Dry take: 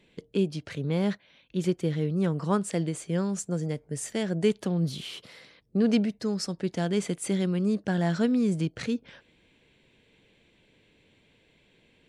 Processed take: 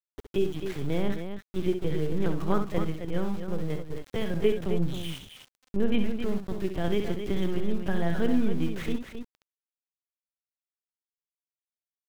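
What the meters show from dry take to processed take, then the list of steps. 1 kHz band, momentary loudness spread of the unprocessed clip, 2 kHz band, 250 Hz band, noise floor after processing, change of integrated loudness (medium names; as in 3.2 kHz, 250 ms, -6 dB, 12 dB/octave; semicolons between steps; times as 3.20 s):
-0.5 dB, 8 LU, -0.5 dB, -2.5 dB, under -85 dBFS, -2.0 dB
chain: LPC vocoder at 8 kHz pitch kept; small samples zeroed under -40 dBFS; loudspeakers at several distances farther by 22 m -8 dB, 91 m -8 dB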